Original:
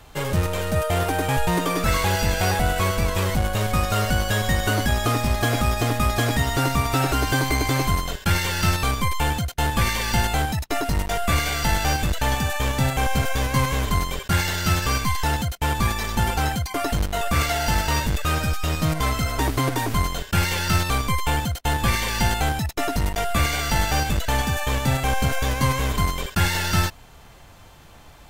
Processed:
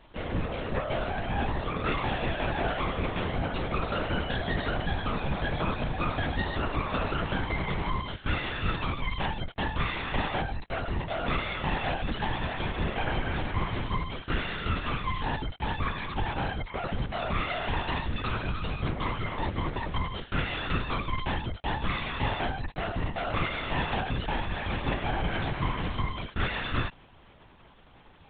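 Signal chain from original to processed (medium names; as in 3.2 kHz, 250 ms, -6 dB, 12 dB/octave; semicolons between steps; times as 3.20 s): LPC vocoder at 8 kHz whisper; trim -8 dB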